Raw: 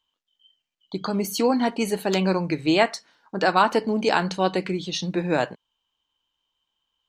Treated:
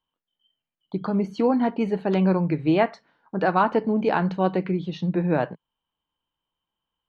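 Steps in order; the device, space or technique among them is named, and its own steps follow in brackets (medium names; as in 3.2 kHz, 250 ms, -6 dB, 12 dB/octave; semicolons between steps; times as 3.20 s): phone in a pocket (low-pass 3.2 kHz 12 dB/octave; peaking EQ 160 Hz +5.5 dB 0.64 oct; treble shelf 2.4 kHz -12 dB)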